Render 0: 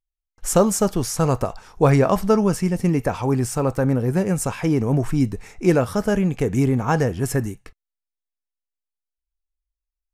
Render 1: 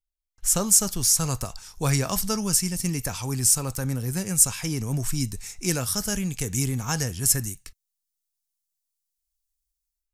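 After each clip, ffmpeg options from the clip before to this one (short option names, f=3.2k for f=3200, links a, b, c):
-filter_complex "[0:a]equalizer=f=490:w=0.45:g=-13,acrossover=split=340|4500[a][b][c];[c]dynaudnorm=f=380:g=3:m=15.5dB[d];[a][b][d]amix=inputs=3:normalize=0,volume=-1.5dB"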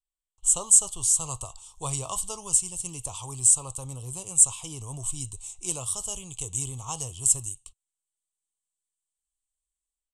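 -af "firequalizer=gain_entry='entry(120,0);entry(210,-15);entry(320,-4);entry(1100,8);entry(1600,-27);entry(3000,9);entry(5100,-8);entry(8000,14);entry(14000,-20)':delay=0.05:min_phase=1,volume=-8dB"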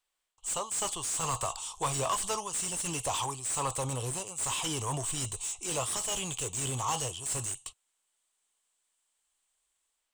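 -filter_complex "[0:a]areverse,acompressor=threshold=-29dB:ratio=20,areverse,asplit=2[a][b];[b]highpass=f=720:p=1,volume=23dB,asoftclip=type=tanh:threshold=-19dB[c];[a][c]amix=inputs=2:normalize=0,lowpass=f=3.2k:p=1,volume=-6dB"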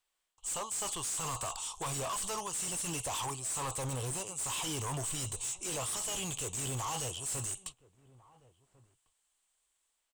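-filter_complex "[0:a]alimiter=level_in=2.5dB:limit=-24dB:level=0:latency=1:release=19,volume=-2.5dB,volume=33.5dB,asoftclip=hard,volume=-33.5dB,asplit=2[a][b];[b]adelay=1399,volume=-22dB,highshelf=f=4k:g=-31.5[c];[a][c]amix=inputs=2:normalize=0"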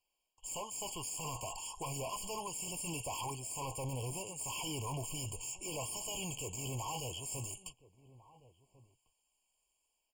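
-af "asoftclip=type=tanh:threshold=-36dB,afftfilt=real='re*eq(mod(floor(b*sr/1024/1100),2),0)':imag='im*eq(mod(floor(b*sr/1024/1100),2),0)':win_size=1024:overlap=0.75,volume=1dB"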